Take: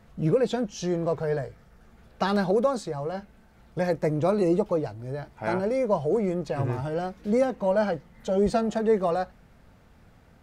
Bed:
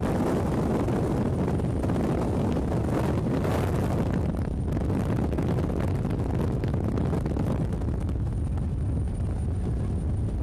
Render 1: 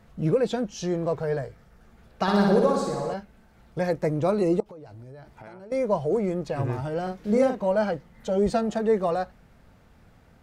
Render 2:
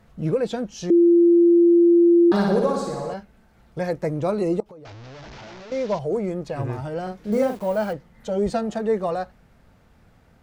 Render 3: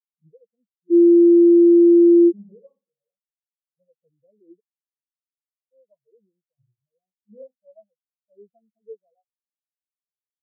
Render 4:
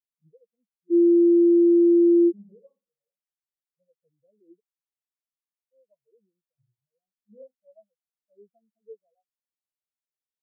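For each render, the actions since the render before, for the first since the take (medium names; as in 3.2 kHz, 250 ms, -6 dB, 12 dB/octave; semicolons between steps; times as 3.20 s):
2.22–3.14 s: flutter echo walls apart 10.1 m, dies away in 1.1 s; 4.60–5.72 s: compression 12:1, threshold -40 dBFS; 7.02–7.65 s: doubling 43 ms -4 dB
0.90–2.32 s: bleep 343 Hz -11 dBFS; 4.85–5.99 s: one-bit delta coder 32 kbps, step -34.5 dBFS; 7.32–7.93 s: send-on-delta sampling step -41.5 dBFS
spectral contrast expander 4:1
trim -5 dB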